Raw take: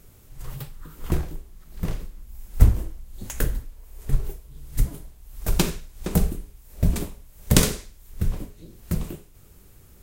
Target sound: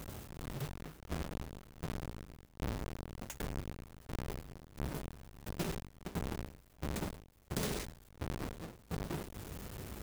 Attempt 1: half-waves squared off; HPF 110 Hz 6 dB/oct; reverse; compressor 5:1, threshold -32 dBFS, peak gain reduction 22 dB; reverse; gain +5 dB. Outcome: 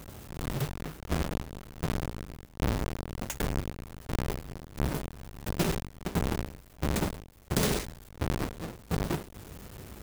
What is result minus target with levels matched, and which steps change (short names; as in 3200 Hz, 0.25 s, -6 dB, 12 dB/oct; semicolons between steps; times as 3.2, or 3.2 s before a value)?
compressor: peak gain reduction -9.5 dB
change: compressor 5:1, threshold -44 dBFS, peak gain reduction 31.5 dB